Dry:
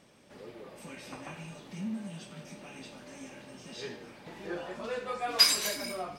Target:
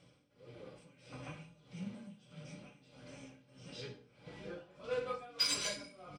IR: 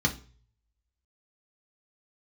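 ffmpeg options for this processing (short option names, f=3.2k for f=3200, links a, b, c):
-filter_complex "[0:a]aresample=22050,aresample=44100,tremolo=f=1.6:d=0.87,asplit=2[a][b];[1:a]atrim=start_sample=2205[c];[b][c]afir=irnorm=-1:irlink=0,volume=-12dB[d];[a][d]amix=inputs=2:normalize=0,aeval=exprs='0.133*(cos(1*acos(clip(val(0)/0.133,-1,1)))-cos(1*PI/2))+0.0119*(cos(3*acos(clip(val(0)/0.133,-1,1)))-cos(3*PI/2))+0.00106*(cos(7*acos(clip(val(0)/0.133,-1,1)))-cos(7*PI/2))':c=same,volume=-2.5dB"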